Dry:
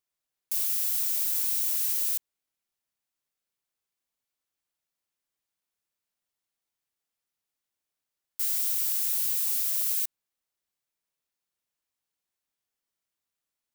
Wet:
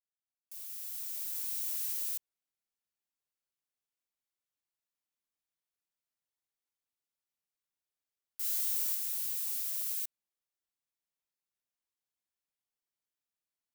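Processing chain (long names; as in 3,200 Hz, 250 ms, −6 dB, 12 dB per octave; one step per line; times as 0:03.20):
fade in at the beginning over 1.71 s
0:08.41–0:08.95: flutter between parallel walls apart 3.9 metres, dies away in 0.47 s
level −8 dB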